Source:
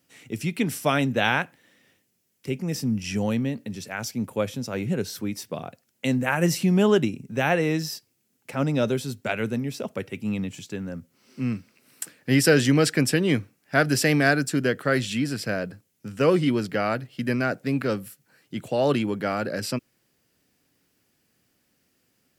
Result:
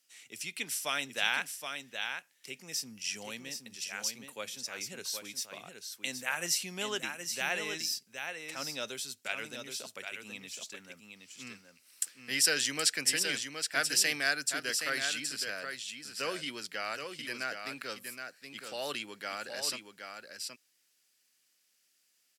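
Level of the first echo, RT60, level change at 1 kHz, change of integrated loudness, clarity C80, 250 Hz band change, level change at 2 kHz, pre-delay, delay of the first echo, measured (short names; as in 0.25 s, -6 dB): -6.5 dB, none, -11.0 dB, -9.0 dB, none, -22.5 dB, -6.0 dB, none, 0.771 s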